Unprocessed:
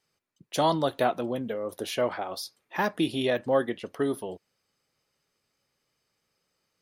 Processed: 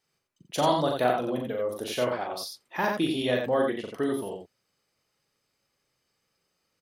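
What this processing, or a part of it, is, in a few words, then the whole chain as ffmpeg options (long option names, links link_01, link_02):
slapback doubling: -filter_complex "[0:a]asplit=3[link_01][link_02][link_03];[link_02]adelay=40,volume=-5dB[link_04];[link_03]adelay=88,volume=-4dB[link_05];[link_01][link_04][link_05]amix=inputs=3:normalize=0,volume=-1.5dB"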